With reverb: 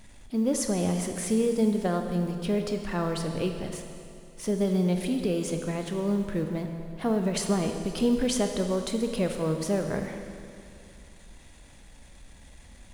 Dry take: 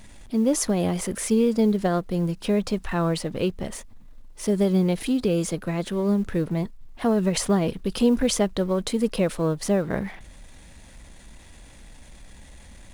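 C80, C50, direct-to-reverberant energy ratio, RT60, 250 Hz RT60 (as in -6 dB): 7.0 dB, 6.0 dB, 5.0 dB, 2.5 s, 2.5 s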